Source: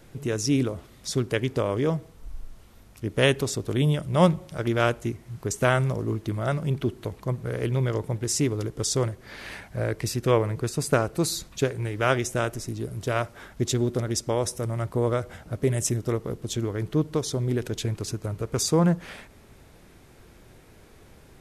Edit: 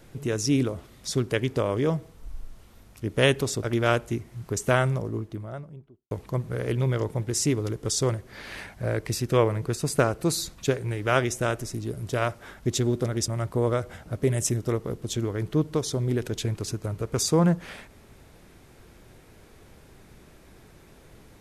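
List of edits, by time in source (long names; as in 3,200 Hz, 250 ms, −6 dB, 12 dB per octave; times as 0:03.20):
0:03.63–0:04.57: remove
0:05.54–0:07.05: fade out and dull
0:14.22–0:14.68: remove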